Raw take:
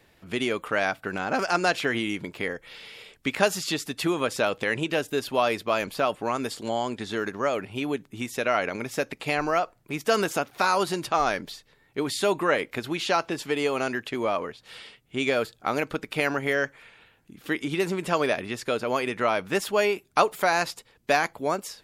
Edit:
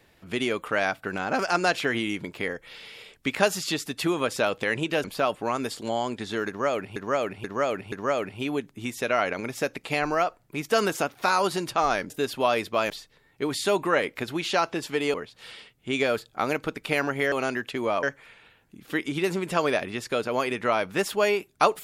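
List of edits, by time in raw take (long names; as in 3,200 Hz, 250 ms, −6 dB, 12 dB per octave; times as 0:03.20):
0:05.04–0:05.84: move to 0:11.46
0:07.28–0:07.76: repeat, 4 plays
0:13.70–0:14.41: move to 0:16.59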